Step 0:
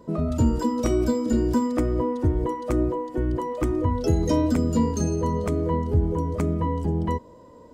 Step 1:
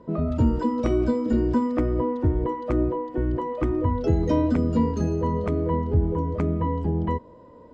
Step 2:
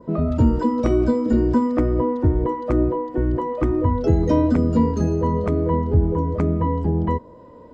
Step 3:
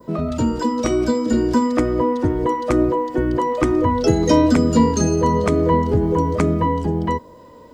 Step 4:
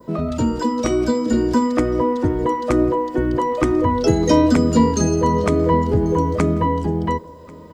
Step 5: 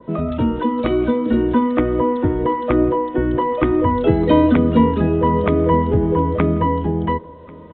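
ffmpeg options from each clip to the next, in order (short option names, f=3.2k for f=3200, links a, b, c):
-af "lowpass=3k"
-af "adynamicequalizer=threshold=0.002:dfrequency=2900:dqfactor=1.3:tfrequency=2900:tqfactor=1.3:attack=5:release=100:ratio=0.375:range=2:mode=cutabove:tftype=bell,volume=4dB"
-filter_complex "[0:a]acrossover=split=130|1000[a][b][c];[a]acompressor=threshold=-29dB:ratio=6[d];[d][b][c]amix=inputs=3:normalize=0,crystalizer=i=7:c=0,dynaudnorm=f=200:g=13:m=11.5dB,volume=-1dB"
-af "aecho=1:1:1090:0.0631"
-af "aresample=8000,aresample=44100,volume=1dB"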